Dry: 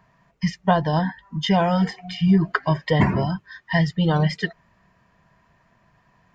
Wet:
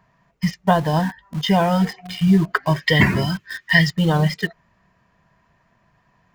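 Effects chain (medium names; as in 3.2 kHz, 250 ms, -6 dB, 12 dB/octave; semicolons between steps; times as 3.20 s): 2.76–3.90 s: FFT filter 390 Hz 0 dB, 830 Hz -6 dB, 1.9 kHz +9 dB; in parallel at -8 dB: bit crusher 5-bit; on the sum: trim -1 dB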